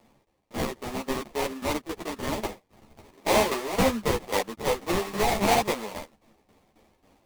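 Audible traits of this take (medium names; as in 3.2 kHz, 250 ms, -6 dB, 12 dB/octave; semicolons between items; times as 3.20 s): a quantiser's noise floor 12-bit, dither triangular; tremolo saw down 3.7 Hz, depth 80%; aliases and images of a low sample rate 1.5 kHz, jitter 20%; a shimmering, thickened sound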